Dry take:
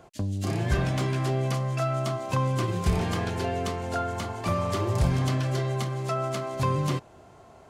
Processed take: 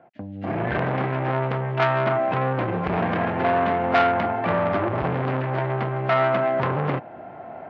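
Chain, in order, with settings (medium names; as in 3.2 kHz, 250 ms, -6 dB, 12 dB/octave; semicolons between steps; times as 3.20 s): level rider gain up to 16.5 dB; cabinet simulation 200–2100 Hz, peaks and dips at 410 Hz -9 dB, 730 Hz +4 dB, 1.1 kHz -9 dB; transformer saturation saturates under 1.5 kHz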